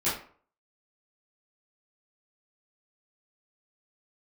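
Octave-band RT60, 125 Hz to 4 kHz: 0.40, 0.45, 0.45, 0.50, 0.40, 0.30 seconds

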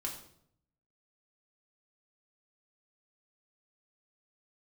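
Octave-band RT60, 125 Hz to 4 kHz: 1.0, 0.85, 0.75, 0.60, 0.55, 0.55 seconds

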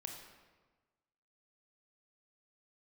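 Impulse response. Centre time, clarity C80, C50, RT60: 43 ms, 6.0 dB, 4.5 dB, 1.3 s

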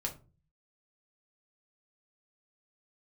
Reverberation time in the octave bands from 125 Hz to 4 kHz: 0.75, 0.60, 0.40, 0.30, 0.25, 0.20 seconds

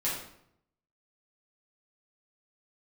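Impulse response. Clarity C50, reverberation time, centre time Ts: 2.0 dB, 0.70 s, 48 ms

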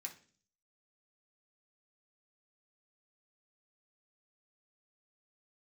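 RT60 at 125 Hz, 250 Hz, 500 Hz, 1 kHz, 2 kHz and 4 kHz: 0.70, 0.65, 0.50, 0.35, 0.40, 0.50 seconds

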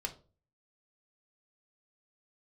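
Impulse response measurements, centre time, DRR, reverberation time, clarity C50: 8 ms, 1.5 dB, 0.35 s, 14.5 dB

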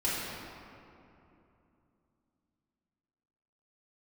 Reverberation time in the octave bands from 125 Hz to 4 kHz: 3.7, 3.7, 3.0, 2.7, 2.2, 1.5 seconds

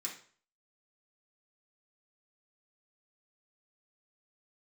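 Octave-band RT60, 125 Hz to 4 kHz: 0.50, 0.45, 0.45, 0.45, 0.45, 0.40 seconds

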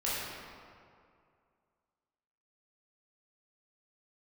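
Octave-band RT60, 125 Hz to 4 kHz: 2.3, 2.3, 2.3, 2.3, 1.8, 1.3 seconds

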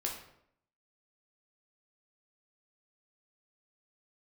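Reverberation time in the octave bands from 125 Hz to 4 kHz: 0.75, 0.80, 0.75, 0.70, 0.60, 0.50 seconds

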